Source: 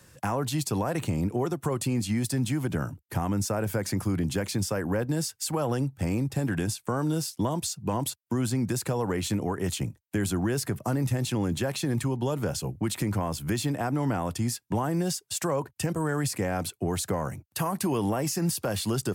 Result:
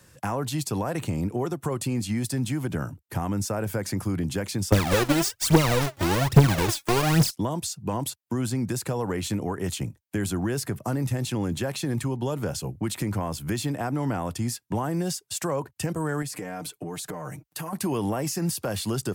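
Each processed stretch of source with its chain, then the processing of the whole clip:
0:04.72–0:07.31: each half-wave held at its own peak + phase shifter 1.2 Hz, delay 3.7 ms, feedback 72%
0:16.22–0:17.73: parametric band 94 Hz −8 dB 1 octave + comb filter 6.6 ms, depth 92% + downward compressor 5 to 1, threshold −31 dBFS
whole clip: no processing

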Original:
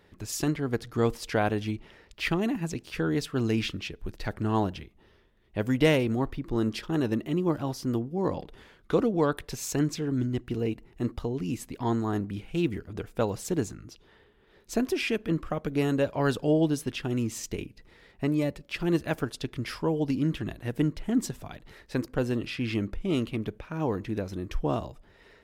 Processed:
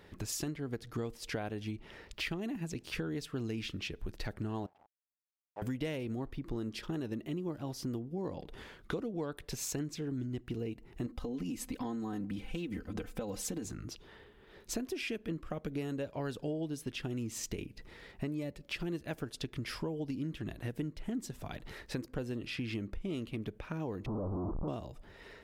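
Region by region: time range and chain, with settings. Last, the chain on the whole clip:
0:04.66–0:05.62: hold until the input has moved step −35 dBFS + resonant band-pass 820 Hz, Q 6.4
0:11.06–0:13.65: comb filter 3.9 ms, depth 80% + downward compressor, threshold −28 dBFS
0:24.06–0:24.68: sign of each sample alone + Butterworth low-pass 1,200 Hz 72 dB per octave
whole clip: dynamic equaliser 1,100 Hz, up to −4 dB, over −45 dBFS, Q 1.3; downward compressor 5 to 1, threshold −39 dBFS; level +3 dB

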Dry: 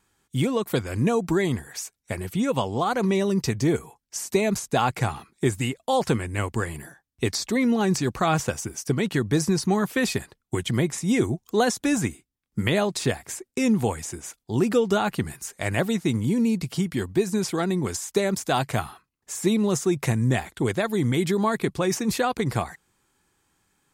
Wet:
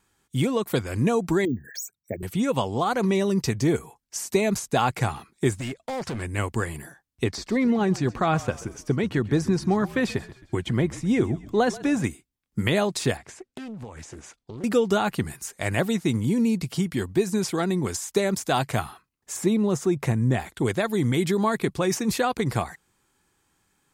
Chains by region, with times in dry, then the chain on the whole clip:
0:01.45–0:02.23: spectral envelope exaggerated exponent 3 + high-pass filter 130 Hz + bad sample-rate conversion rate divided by 2×, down none, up hold
0:05.53–0:06.22: low-pass filter 8,000 Hz + downward compressor 5 to 1, threshold −22 dBFS + hard clipping −27 dBFS
0:07.24–0:12.04: low-pass filter 2,400 Hz 6 dB per octave + echo with shifted repeats 133 ms, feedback 46%, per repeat −45 Hz, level −18 dB
0:13.17–0:14.64: downward compressor 12 to 1, threshold −33 dBFS + high-frequency loss of the air 79 metres + highs frequency-modulated by the lows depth 0.47 ms
0:19.36–0:20.40: high-shelf EQ 2,100 Hz −8 dB + upward compression, threshold −26 dBFS
whole clip: no processing

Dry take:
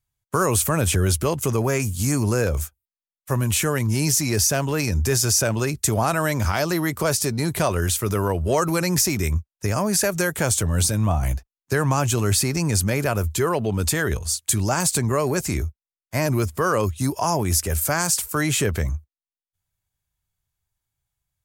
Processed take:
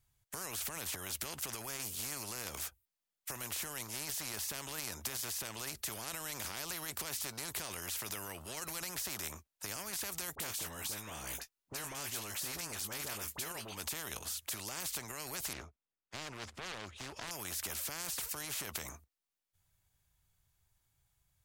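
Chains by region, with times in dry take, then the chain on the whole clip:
0:10.35–0:13.76: double-tracking delay 19 ms −11 dB + all-pass dispersion highs, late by 43 ms, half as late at 1,300 Hz
0:15.53–0:17.31: phase distortion by the signal itself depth 0.32 ms + head-to-tape spacing loss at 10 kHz 22 dB
whole clip: brickwall limiter −17.5 dBFS; every bin compressed towards the loudest bin 4 to 1

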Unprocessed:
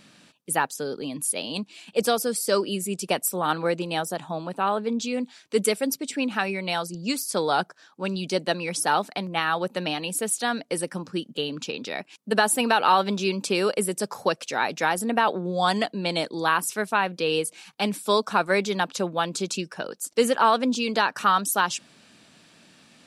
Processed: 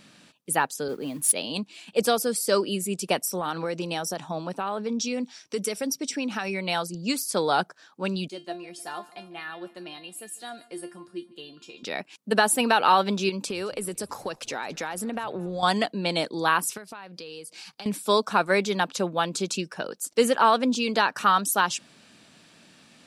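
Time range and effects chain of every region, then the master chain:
0:00.88–0:01.32: noise that follows the level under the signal 19 dB + multiband upward and downward expander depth 70%
0:03.22–0:06.54: parametric band 5,600 Hz +14.5 dB 0.2 octaves + downward compressor 5 to 1, threshold −24 dBFS
0:08.28–0:11.83: notch filter 5,900 Hz, Q 9.3 + tuned comb filter 350 Hz, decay 0.22 s, mix 90% + repeating echo 149 ms, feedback 53%, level −20.5 dB
0:13.29–0:15.63: downward compressor, threshold −27 dBFS + echo with shifted repeats 217 ms, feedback 51%, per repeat −98 Hz, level −23 dB
0:16.77–0:17.86: parametric band 4,800 Hz +11 dB 0.33 octaves + downward compressor 8 to 1, threshold −37 dBFS
whole clip: no processing

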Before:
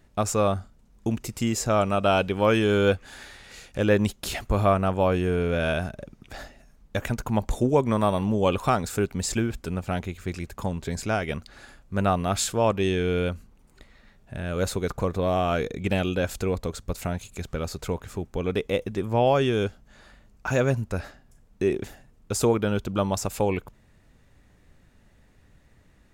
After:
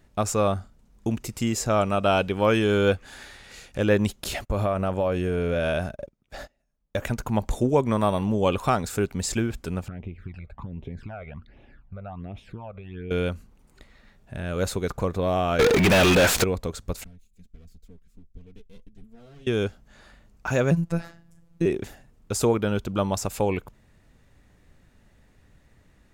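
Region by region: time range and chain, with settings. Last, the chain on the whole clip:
0:04.24–0:07.06: noise gate −41 dBFS, range −22 dB + parametric band 570 Hz +6 dB 0.28 octaves + downward compressor, threshold −20 dBFS
0:09.88–0:13.11: downward compressor 12 to 1, threshold −29 dBFS + high-frequency loss of the air 450 metres + all-pass phaser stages 12, 1.3 Hz, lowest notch 290–1,500 Hz
0:15.59–0:16.44: converter with a step at zero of −37.5 dBFS + high-shelf EQ 8,400 Hz +10.5 dB + mid-hump overdrive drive 37 dB, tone 3,700 Hz, clips at −10.5 dBFS
0:17.04–0:19.47: lower of the sound and its delayed copy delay 4.4 ms + guitar amp tone stack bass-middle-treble 10-0-1 + flanger 1.5 Hz, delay 0.3 ms, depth 6.1 ms, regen +51%
0:20.71–0:21.66: parametric band 150 Hz +9.5 dB 2 octaves + phases set to zero 168 Hz
whole clip: no processing

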